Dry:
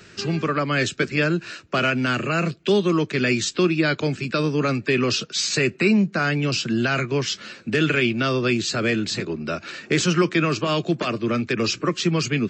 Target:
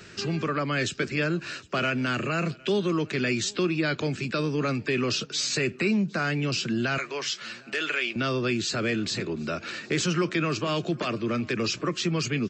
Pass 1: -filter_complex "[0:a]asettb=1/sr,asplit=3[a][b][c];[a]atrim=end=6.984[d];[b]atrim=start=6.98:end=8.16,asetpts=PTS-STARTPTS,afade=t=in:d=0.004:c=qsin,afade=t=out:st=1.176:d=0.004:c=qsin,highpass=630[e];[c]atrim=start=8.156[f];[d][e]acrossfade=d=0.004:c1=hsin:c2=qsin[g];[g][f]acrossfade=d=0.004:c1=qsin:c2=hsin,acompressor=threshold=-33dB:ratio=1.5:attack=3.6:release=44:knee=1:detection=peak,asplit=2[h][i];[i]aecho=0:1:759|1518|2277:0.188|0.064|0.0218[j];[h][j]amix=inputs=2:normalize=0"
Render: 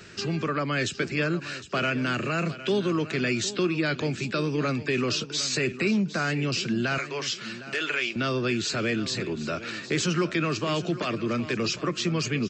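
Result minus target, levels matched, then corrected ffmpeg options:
echo-to-direct +11 dB
-filter_complex "[0:a]asettb=1/sr,asplit=3[a][b][c];[a]atrim=end=6.984[d];[b]atrim=start=6.98:end=8.16,asetpts=PTS-STARTPTS,afade=t=in:d=0.004:c=qsin,afade=t=out:st=1.176:d=0.004:c=qsin,highpass=630[e];[c]atrim=start=8.156[f];[d][e]acrossfade=d=0.004:c1=hsin:c2=qsin[g];[g][f]acrossfade=d=0.004:c1=qsin:c2=hsin,acompressor=threshold=-33dB:ratio=1.5:attack=3.6:release=44:knee=1:detection=peak,asplit=2[h][i];[i]aecho=0:1:759|1518:0.0531|0.0181[j];[h][j]amix=inputs=2:normalize=0"

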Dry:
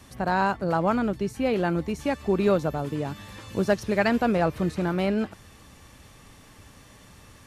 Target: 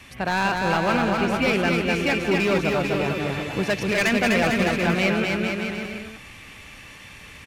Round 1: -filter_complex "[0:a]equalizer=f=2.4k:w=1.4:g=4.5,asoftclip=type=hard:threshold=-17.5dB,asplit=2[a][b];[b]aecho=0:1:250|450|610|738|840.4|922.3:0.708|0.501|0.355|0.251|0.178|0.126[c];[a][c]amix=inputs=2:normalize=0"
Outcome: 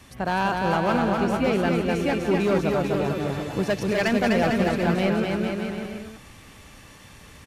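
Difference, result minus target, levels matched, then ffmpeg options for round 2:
2000 Hz band -4.5 dB
-filter_complex "[0:a]equalizer=f=2.4k:w=1.4:g=15.5,asoftclip=type=hard:threshold=-17.5dB,asplit=2[a][b];[b]aecho=0:1:250|450|610|738|840.4|922.3:0.708|0.501|0.355|0.251|0.178|0.126[c];[a][c]amix=inputs=2:normalize=0"

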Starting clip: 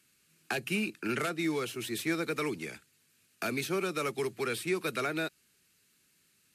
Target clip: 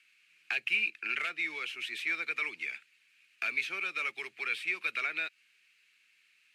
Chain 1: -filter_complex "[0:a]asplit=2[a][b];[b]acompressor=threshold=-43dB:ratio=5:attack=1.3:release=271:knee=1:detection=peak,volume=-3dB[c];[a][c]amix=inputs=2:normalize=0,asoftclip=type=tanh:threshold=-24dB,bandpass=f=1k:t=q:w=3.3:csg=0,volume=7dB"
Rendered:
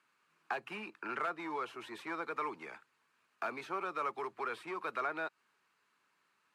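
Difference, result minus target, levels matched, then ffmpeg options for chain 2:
1000 Hz band +14.0 dB; soft clip: distortion +12 dB
-filter_complex "[0:a]asplit=2[a][b];[b]acompressor=threshold=-43dB:ratio=5:attack=1.3:release=271:knee=1:detection=peak,volume=-3dB[c];[a][c]amix=inputs=2:normalize=0,asoftclip=type=tanh:threshold=-16.5dB,bandpass=f=2.4k:t=q:w=3.3:csg=0,volume=7dB"

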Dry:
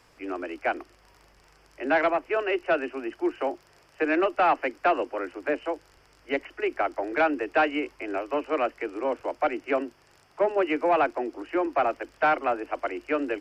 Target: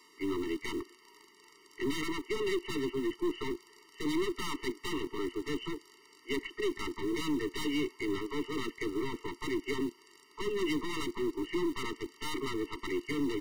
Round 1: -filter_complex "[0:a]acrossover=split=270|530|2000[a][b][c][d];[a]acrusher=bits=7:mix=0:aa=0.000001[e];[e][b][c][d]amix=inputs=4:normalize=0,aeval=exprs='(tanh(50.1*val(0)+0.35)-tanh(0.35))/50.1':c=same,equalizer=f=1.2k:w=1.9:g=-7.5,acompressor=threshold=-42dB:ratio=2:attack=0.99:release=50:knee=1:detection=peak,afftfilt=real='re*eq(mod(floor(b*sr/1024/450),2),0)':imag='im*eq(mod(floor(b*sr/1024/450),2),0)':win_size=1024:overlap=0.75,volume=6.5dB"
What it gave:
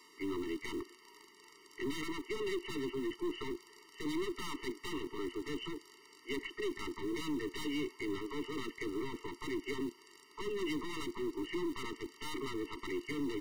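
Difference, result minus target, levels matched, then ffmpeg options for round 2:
compressor: peak gain reduction +5.5 dB
-filter_complex "[0:a]acrossover=split=270|530|2000[a][b][c][d];[a]acrusher=bits=7:mix=0:aa=0.000001[e];[e][b][c][d]amix=inputs=4:normalize=0,aeval=exprs='(tanh(50.1*val(0)+0.35)-tanh(0.35))/50.1':c=same,equalizer=f=1.2k:w=1.9:g=-7.5,afftfilt=real='re*eq(mod(floor(b*sr/1024/450),2),0)':imag='im*eq(mod(floor(b*sr/1024/450),2),0)':win_size=1024:overlap=0.75,volume=6.5dB"

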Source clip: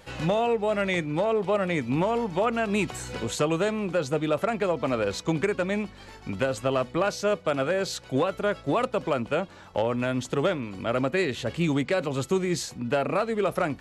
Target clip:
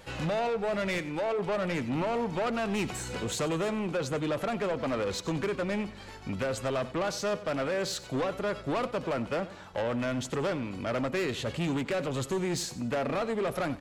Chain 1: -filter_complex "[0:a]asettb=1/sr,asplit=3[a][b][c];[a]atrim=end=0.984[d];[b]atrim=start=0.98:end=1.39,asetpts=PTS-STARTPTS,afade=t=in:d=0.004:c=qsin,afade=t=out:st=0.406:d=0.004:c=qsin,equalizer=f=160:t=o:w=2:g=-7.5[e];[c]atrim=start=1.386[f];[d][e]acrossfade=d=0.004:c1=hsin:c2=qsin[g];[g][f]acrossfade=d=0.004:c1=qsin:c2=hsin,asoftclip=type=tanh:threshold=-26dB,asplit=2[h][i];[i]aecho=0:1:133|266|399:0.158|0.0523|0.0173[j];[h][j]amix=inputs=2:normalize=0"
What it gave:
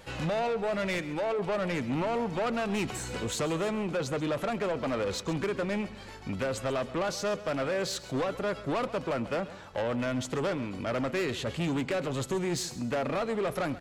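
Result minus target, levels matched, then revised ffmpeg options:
echo 41 ms late
-filter_complex "[0:a]asettb=1/sr,asplit=3[a][b][c];[a]atrim=end=0.984[d];[b]atrim=start=0.98:end=1.39,asetpts=PTS-STARTPTS,afade=t=in:d=0.004:c=qsin,afade=t=out:st=0.406:d=0.004:c=qsin,equalizer=f=160:t=o:w=2:g=-7.5[e];[c]atrim=start=1.386[f];[d][e]acrossfade=d=0.004:c1=hsin:c2=qsin[g];[g][f]acrossfade=d=0.004:c1=qsin:c2=hsin,asoftclip=type=tanh:threshold=-26dB,asplit=2[h][i];[i]aecho=0:1:92|184|276:0.158|0.0523|0.0173[j];[h][j]amix=inputs=2:normalize=0"

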